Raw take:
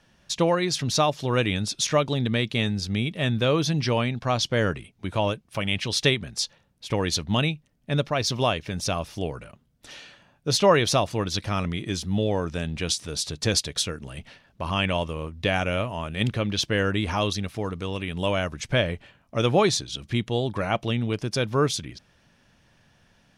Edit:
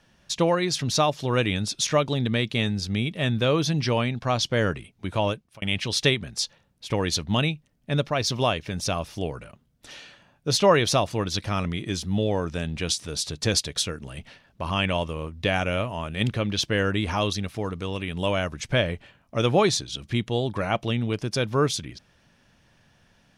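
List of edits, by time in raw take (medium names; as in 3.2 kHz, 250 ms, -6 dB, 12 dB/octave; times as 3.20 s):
5.32–5.62 s: fade out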